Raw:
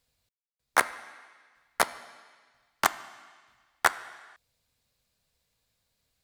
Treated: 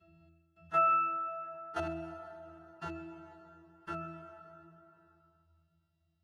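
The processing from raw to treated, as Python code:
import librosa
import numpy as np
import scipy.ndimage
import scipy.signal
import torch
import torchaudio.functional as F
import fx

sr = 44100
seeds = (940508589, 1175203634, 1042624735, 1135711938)

y = fx.freq_snap(x, sr, grid_st=2)
y = fx.doppler_pass(y, sr, speed_mps=15, closest_m=8.3, pass_at_s=1.31)
y = fx.level_steps(y, sr, step_db=21)
y = fx.leveller(y, sr, passes=5)
y = fx.notch_comb(y, sr, f0_hz=580.0)
y = fx.echo_filtered(y, sr, ms=129, feedback_pct=31, hz=5000.0, wet_db=-21.5)
y = fx.pitch_keep_formants(y, sr, semitones=4.5)
y = fx.high_shelf(y, sr, hz=9600.0, db=-11.0)
y = fx.octave_resonator(y, sr, note='E', decay_s=0.64)
y = fx.rev_plate(y, sr, seeds[0], rt60_s=1.9, hf_ratio=0.75, predelay_ms=0, drr_db=16.0)
y = fx.env_flatten(y, sr, amount_pct=50)
y = y * librosa.db_to_amplitude(6.5)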